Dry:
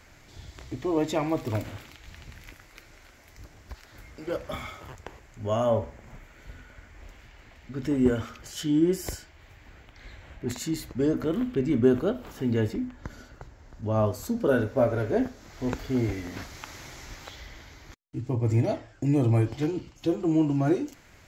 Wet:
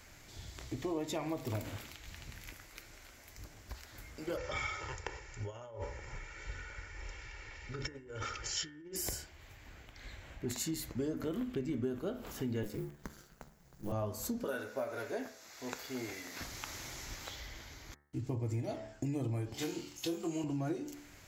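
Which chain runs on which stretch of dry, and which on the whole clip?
0:04.37–0:08.96: compressor whose output falls as the input rises −35 dBFS + Chebyshev low-pass with heavy ripple 7,300 Hz, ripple 6 dB + comb filter 2.2 ms, depth 71%
0:12.63–0:13.92: mu-law and A-law mismatch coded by A + high-shelf EQ 7,500 Hz +9.5 dB + ring modulation 100 Hz
0:14.44–0:16.41: high-pass filter 960 Hz 6 dB per octave + notch filter 3,100 Hz, Q 13
0:19.54–0:20.44: spectral tilt +2.5 dB per octave + flutter between parallel walls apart 4.1 metres, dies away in 0.26 s
whole clip: high-shelf EQ 5,100 Hz +8 dB; hum removal 72.57 Hz, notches 30; downward compressor 6 to 1, threshold −30 dBFS; level −3.5 dB

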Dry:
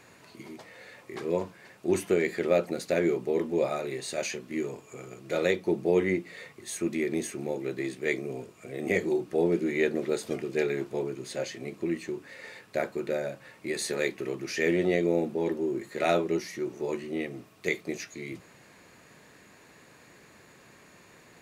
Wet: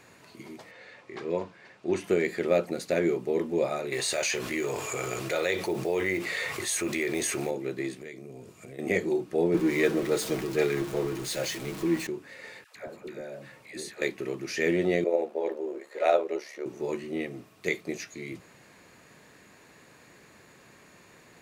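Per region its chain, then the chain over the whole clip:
0:00.71–0:02.04: low-pass filter 5,200 Hz + low-shelf EQ 330 Hz −4 dB
0:03.92–0:07.51: one scale factor per block 7 bits + parametric band 210 Hz −13.5 dB 1.7 octaves + envelope flattener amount 70%
0:08.01–0:08.79: bass and treble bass +5 dB, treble +4 dB + downward compressor 4 to 1, threshold −41 dBFS
0:09.54–0:12.07: converter with a step at zero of −32.5 dBFS + comb filter 6.3 ms, depth 44% + multiband upward and downward expander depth 40%
0:12.64–0:14.02: downward compressor 4 to 1, threshold −37 dBFS + all-pass dispersion lows, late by 121 ms, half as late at 660 Hz
0:15.04–0:16.66: high-shelf EQ 5,200 Hz −7.5 dB + amplitude modulation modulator 71 Hz, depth 45% + high-pass with resonance 540 Hz, resonance Q 2.4
whole clip: no processing

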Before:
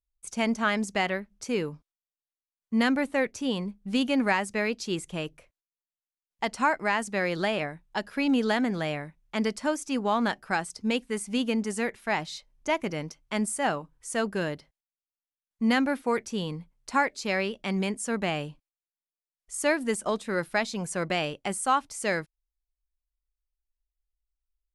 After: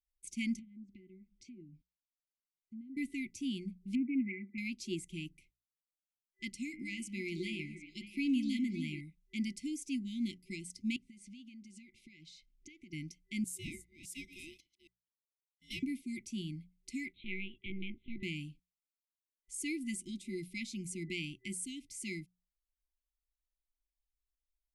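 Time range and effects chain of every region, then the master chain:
0:00.59–0:02.97: low-pass filter 10,000 Hz + downward compressor 2 to 1, threshold −50 dBFS + treble cut that deepens with the level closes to 540 Hz, closed at −37 dBFS
0:03.95–0:04.58: linear-phase brick-wall band-pass 180–2,400 Hz + highs frequency-modulated by the lows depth 0.14 ms
0:06.50–0:09.01: hum removal 103.7 Hz, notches 32 + echo through a band-pass that steps 186 ms, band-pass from 310 Hz, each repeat 1.4 octaves, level −6 dB
0:10.96–0:12.93: low-pass filter 6,400 Hz + downward compressor 8 to 1, threshold −42 dBFS
0:13.44–0:15.83: delay that plays each chunk backwards 205 ms, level −12.5 dB + high-pass filter 920 Hz 6 dB per octave + ring modulation 950 Hz
0:17.12–0:18.23: high-pass filter 230 Hz + linear-prediction vocoder at 8 kHz pitch kept
whole clip: brick-wall band-stop 380–2,000 Hz; mains-hum notches 60/120/180 Hz; dynamic equaliser 4,000 Hz, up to −4 dB, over −48 dBFS, Q 1.2; level −7 dB

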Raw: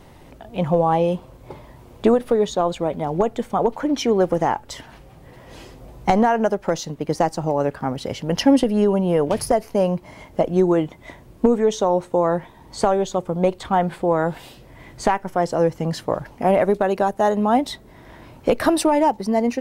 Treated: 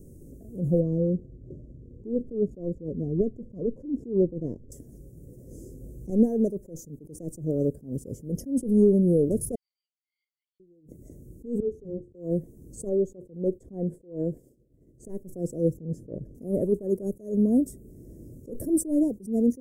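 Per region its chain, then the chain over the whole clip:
0:00.80–0:04.72: running median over 15 samples + head-to-tape spacing loss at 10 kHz 21 dB + phaser whose notches keep moving one way falling 1.1 Hz
0:09.55–0:10.60: downward compressor 4 to 1, threshold −24 dBFS + linear-phase brick-wall band-pass 2,000–4,800 Hz
0:11.60–0:12.15: lower of the sound and its delayed copy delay 2.4 ms + resonant band-pass 120 Hz, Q 0.52
0:12.89–0:15.05: downward expander −36 dBFS + bass and treble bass −5 dB, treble −12 dB
0:15.77–0:16.35: low-pass filter 1,200 Hz 6 dB per octave + saturating transformer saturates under 950 Hz
whole clip: inverse Chebyshev band-stop filter 800–4,200 Hz, stop band 40 dB; dynamic equaliser 5,700 Hz, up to −7 dB, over −57 dBFS, Q 1.3; level that may rise only so fast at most 160 dB per second

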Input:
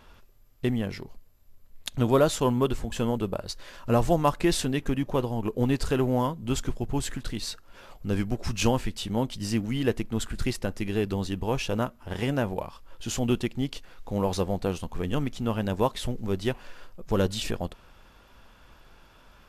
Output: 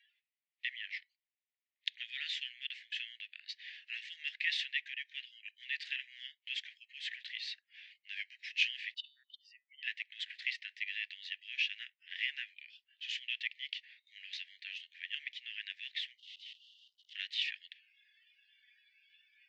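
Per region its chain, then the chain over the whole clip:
0:08.94–0:09.83: expanding power law on the bin magnitudes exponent 1.9 + hum removal 142 Hz, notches 33 + saturating transformer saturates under 300 Hz
0:16.18–0:17.15: one scale factor per block 3 bits + Butterworth high-pass 2,800 Hz 96 dB per octave + tube saturation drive 44 dB, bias 0.7
whole clip: low-pass filter 3,300 Hz 24 dB per octave; noise reduction from a noise print of the clip's start 19 dB; Butterworth high-pass 1,800 Hz 96 dB per octave; level +3.5 dB

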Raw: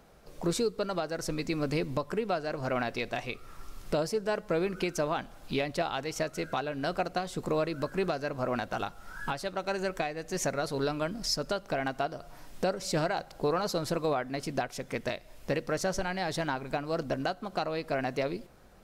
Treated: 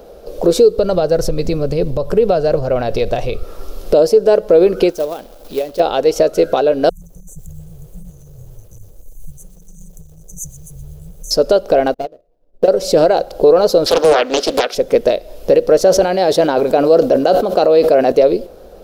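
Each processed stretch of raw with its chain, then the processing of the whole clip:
0:00.78–0:03.43: low shelf with overshoot 190 Hz +12 dB, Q 1.5 + downward compressor 5 to 1, threshold −28 dBFS
0:04.90–0:05.80: downward compressor 1.5 to 1, threshold −44 dBFS + log-companded quantiser 4 bits + noise gate −35 dBFS, range −7 dB
0:06.89–0:11.31: amplitude modulation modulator 220 Hz, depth 50% + linear-phase brick-wall band-stop 170–5,900 Hz + feedback echo at a low word length 124 ms, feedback 55%, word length 9 bits, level −14 dB
0:11.94–0:12.68: running median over 41 samples + mains-hum notches 60/120/180/240/300/360/420/480/540/600 Hz + expander for the loud parts 2.5 to 1, over −48 dBFS
0:13.86–0:14.75: high-pass filter 200 Hz 24 dB per octave + flat-topped bell 2,500 Hz +11 dB 2.5 octaves + highs frequency-modulated by the lows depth 0.95 ms
0:15.84–0:18.12: high-pass filter 110 Hz 6 dB per octave + level that may fall only so fast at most 39 dB per second
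whole clip: graphic EQ with 10 bands 125 Hz −12 dB, 250 Hz −3 dB, 500 Hz +12 dB, 1,000 Hz −7 dB, 2,000 Hz −11 dB, 8,000 Hz −8 dB; boost into a limiter +18.5 dB; level −1 dB

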